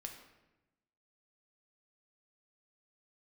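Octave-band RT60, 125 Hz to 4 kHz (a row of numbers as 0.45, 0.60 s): 1.4, 1.3, 1.1, 0.95, 0.90, 0.70 s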